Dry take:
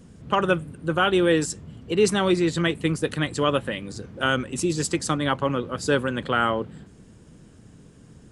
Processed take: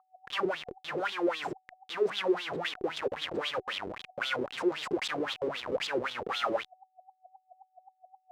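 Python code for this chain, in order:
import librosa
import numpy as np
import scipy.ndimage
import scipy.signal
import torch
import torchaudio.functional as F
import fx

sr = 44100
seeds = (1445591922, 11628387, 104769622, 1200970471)

y = fx.schmitt(x, sr, flips_db=-32.0)
y = y + 10.0 ** (-50.0 / 20.0) * np.sin(2.0 * np.pi * 750.0 * np.arange(len(y)) / sr)
y = fx.wah_lfo(y, sr, hz=3.8, low_hz=370.0, high_hz=3600.0, q=6.4)
y = y * librosa.db_to_amplitude(6.0)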